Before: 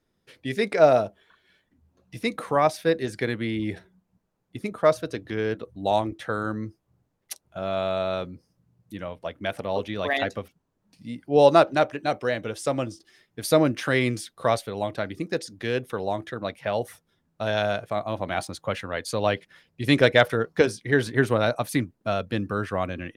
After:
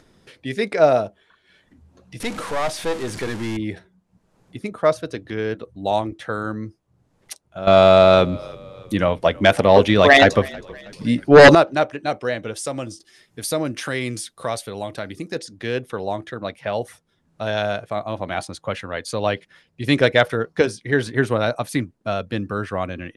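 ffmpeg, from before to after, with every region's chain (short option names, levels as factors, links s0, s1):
-filter_complex "[0:a]asettb=1/sr,asplit=3[s0][s1][s2];[s0]atrim=end=2.204[s3];[s1]atrim=start=2.2:end=3.57,asetpts=PTS-STARTPTS,afade=t=in:d=0.004:c=qsin,afade=t=out:st=1.366:d=0.004:c=qsin,aeval=exprs='val(0)+0.5*0.0501*sgn(val(0))':c=same,aeval=exprs='(tanh(10*val(0)+0.7)-tanh(0.7))/10':c=same[s4];[s2]atrim=start=3.566[s5];[s3][s4]acrossfade=d=0.004:c1=hsin:c2=qsin[s6];[s6][s5]acrossfade=d=0.004:c1=qsin:c2=hsin,asettb=1/sr,asplit=3[s7][s8][s9];[s7]atrim=end=7.674[s10];[s8]atrim=start=7.67:end=11.55,asetpts=PTS-STARTPTS,afade=t=in:d=0.004:c=qsin,afade=t=out:st=3.876:d=0.004:c=qsin,aeval=exprs='0.631*sin(PI/2*3.16*val(0)/0.631)':c=same,asplit=4[s11][s12][s13][s14];[s12]adelay=320,afreqshift=-38,volume=0.0708[s15];[s13]adelay=640,afreqshift=-76,volume=0.0327[s16];[s14]adelay=960,afreqshift=-114,volume=0.015[s17];[s11][s15][s16][s17]amix=inputs=4:normalize=0,atrim=end_sample=171108[s18];[s9]atrim=start=11.546[s19];[s10][s18]acrossfade=d=0.004:c1=hsin:c2=qsin[s20];[s20][s19]acrossfade=d=0.004:c1=qsin:c2=hsin,asettb=1/sr,asplit=3[s21][s22][s23];[s21]atrim=end=12.564[s24];[s22]atrim=start=12.56:end=15.36,asetpts=PTS-STARTPTS,afade=t=in:d=0.004:c=qsin,afade=t=out:st=2.796:d=0.004:c=qsin,highshelf=f=6000:g=10.5,acompressor=threshold=0.0316:ratio=1.5:attack=3.2:release=140:knee=1:detection=peak[s25];[s23]atrim=start=15.356[s26];[s24][s25]acrossfade=d=0.004:c1=hsin:c2=qsin[s27];[s27][s26]acrossfade=d=0.004:c1=qsin:c2=hsin,lowpass=f=11000:w=0.5412,lowpass=f=11000:w=1.3066,acompressor=mode=upward:threshold=0.00708:ratio=2.5,volume=1.26"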